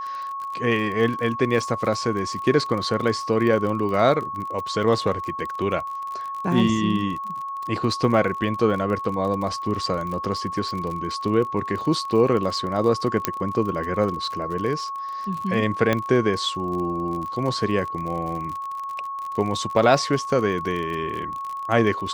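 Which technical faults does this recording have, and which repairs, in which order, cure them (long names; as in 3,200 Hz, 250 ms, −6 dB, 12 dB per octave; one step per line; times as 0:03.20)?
surface crackle 37 per second −29 dBFS
whistle 1,100 Hz −28 dBFS
0:13.25: click −3 dBFS
0:15.93: click −8 dBFS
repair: click removal
notch filter 1,100 Hz, Q 30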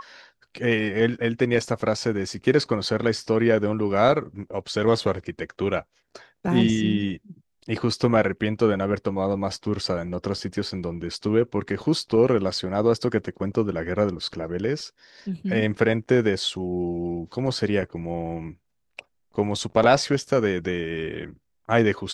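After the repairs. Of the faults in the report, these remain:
none of them is left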